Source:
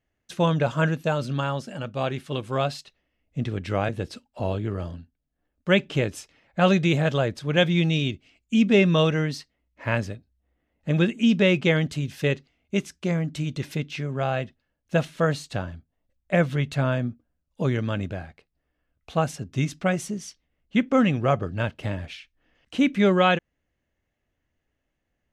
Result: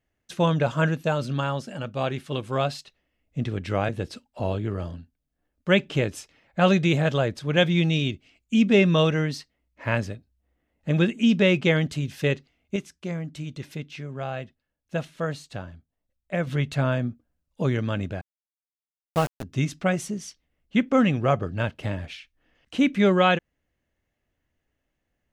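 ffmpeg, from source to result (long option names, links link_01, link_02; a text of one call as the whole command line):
ffmpeg -i in.wav -filter_complex "[0:a]asettb=1/sr,asplit=3[link_01][link_02][link_03];[link_01]atrim=end=18.214[link_04];[link_02]atrim=start=18.21:end=19.43,asetpts=PTS-STARTPTS,afade=type=in:duration=0.004:curve=qsin,afade=type=out:start_time=1.216:duration=0.004:curve=qsin,aeval=exprs='val(0)*gte(abs(val(0)),0.0473)':channel_layout=same[link_05];[link_03]atrim=start=19.426[link_06];[link_04][link_05]acrossfade=duration=0.004:curve1=hsin:curve2=qsin[link_07];[link_07][link_06]acrossfade=duration=0.004:curve1=qsin:curve2=hsin,asplit=3[link_08][link_09][link_10];[link_08]atrim=end=12.762[link_11];[link_09]atrim=start=12.758:end=16.472,asetpts=PTS-STARTPTS,volume=-6dB[link_12];[link_10]atrim=start=16.468[link_13];[link_11][link_12]acrossfade=duration=0.004:curve1=hsin:curve2=hsin[link_14];[link_14][link_13]acrossfade=duration=0.004:curve1=hsin:curve2=hsin" out.wav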